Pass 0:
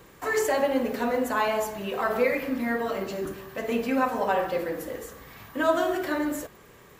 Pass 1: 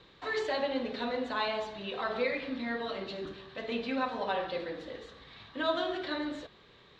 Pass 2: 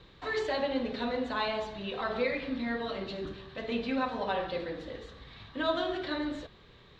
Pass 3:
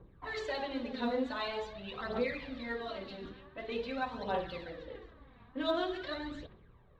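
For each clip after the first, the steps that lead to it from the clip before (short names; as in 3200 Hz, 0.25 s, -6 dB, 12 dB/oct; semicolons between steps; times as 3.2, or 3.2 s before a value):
ladder low-pass 4100 Hz, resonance 75%; gain +4 dB
low shelf 130 Hz +12 dB
low-pass opened by the level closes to 870 Hz, open at -29 dBFS; phaser 0.46 Hz, delay 4.3 ms, feedback 56%; gain -6 dB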